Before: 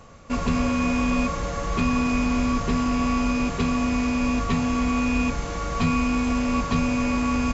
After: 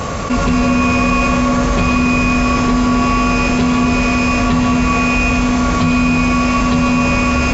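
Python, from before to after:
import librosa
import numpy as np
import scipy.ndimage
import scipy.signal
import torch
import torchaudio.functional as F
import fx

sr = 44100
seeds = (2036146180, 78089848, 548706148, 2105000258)

y = scipy.signal.sosfilt(scipy.signal.butter(2, 42.0, 'highpass', fs=sr, output='sos'), x)
y = fx.rev_freeverb(y, sr, rt60_s=2.4, hf_ratio=0.65, predelay_ms=65, drr_db=0.0)
y = fx.env_flatten(y, sr, amount_pct=70)
y = F.gain(torch.from_numpy(y), 5.5).numpy()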